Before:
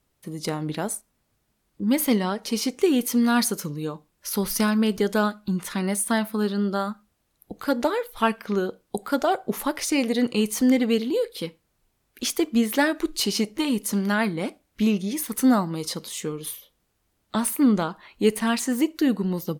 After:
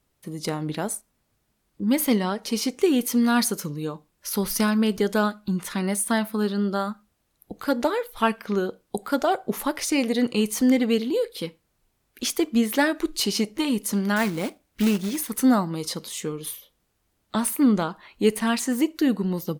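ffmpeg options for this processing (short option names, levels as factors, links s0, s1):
-filter_complex "[0:a]asettb=1/sr,asplit=3[s0][s1][s2];[s0]atrim=end=14.164[s3];[s1]atrim=start=14.16:end=15.21,asetpts=PTS-STARTPTS,afade=t=in:d=0.004:c=qsin,afade=t=out:st=1.046:d=0.004:c=qsin,acrusher=bits=3:mode=log:mix=0:aa=0.000001[s4];[s2]atrim=start=15.206[s5];[s3][s4]acrossfade=d=0.004:c1=hsin:c2=qsin[s6];[s6][s5]acrossfade=d=0.004:c1=qsin:c2=hsin"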